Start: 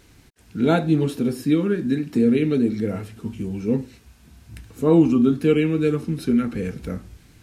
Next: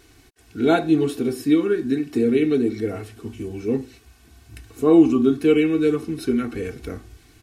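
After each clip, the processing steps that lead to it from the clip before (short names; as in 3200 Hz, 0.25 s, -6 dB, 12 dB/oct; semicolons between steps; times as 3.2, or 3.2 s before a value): low shelf 130 Hz -5.5 dB; comb 2.7 ms, depth 67%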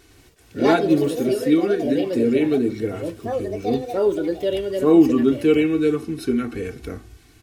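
echoes that change speed 0.108 s, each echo +4 st, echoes 2, each echo -6 dB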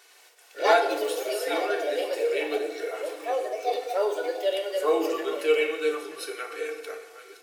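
reverse delay 0.567 s, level -12.5 dB; inverse Chebyshev high-pass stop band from 260 Hz, stop band 40 dB; FDN reverb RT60 1 s, low-frequency decay 1.25×, high-frequency decay 0.85×, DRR 5 dB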